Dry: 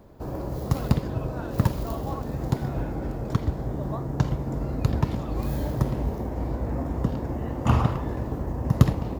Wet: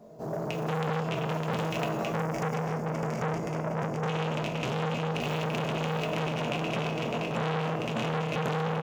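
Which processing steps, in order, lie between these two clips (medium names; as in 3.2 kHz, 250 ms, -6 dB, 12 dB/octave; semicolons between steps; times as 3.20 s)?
rattle on loud lows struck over -24 dBFS, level -10 dBFS; speed mistake 24 fps film run at 25 fps; resonant low shelf 110 Hz -11.5 dB, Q 3; feedback comb 160 Hz, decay 1.2 s, mix 80%; delay 606 ms -4.5 dB; reverberation RT60 0.45 s, pre-delay 4 ms, DRR -2 dB; time-frequency box 2.14–4.08 s, 2.3–4.6 kHz -15 dB; fifteen-band graphic EQ 630 Hz +10 dB, 1.6 kHz -4 dB, 6.3 kHz +8 dB; peak limiter -20.5 dBFS, peak gain reduction 9 dB; transformer saturation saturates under 990 Hz; trim +5 dB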